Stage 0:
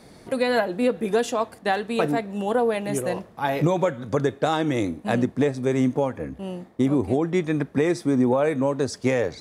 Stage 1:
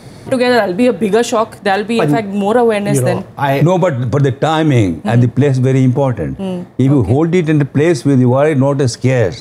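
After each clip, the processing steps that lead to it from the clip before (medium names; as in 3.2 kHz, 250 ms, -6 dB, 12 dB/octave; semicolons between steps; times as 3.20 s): peaking EQ 120 Hz +12.5 dB 0.48 oct; loudness maximiser +12.5 dB; trim -1 dB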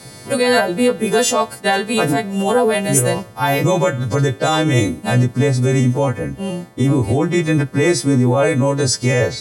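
partials quantised in pitch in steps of 2 st; trim -3.5 dB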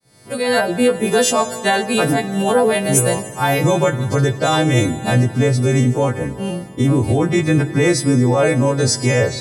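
fade-in on the opening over 0.71 s; Schroeder reverb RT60 3.1 s, combs from 26 ms, DRR 11 dB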